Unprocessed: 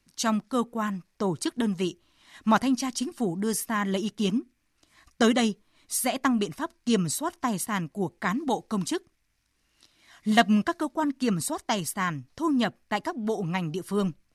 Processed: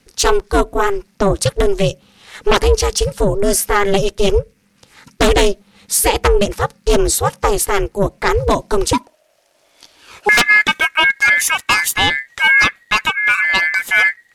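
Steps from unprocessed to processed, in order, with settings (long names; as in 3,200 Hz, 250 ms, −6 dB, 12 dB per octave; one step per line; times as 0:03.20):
sine wavefolder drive 10 dB, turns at −7.5 dBFS
ring modulation 200 Hz, from 0:08.93 620 Hz, from 0:10.29 1,900 Hz
level +3.5 dB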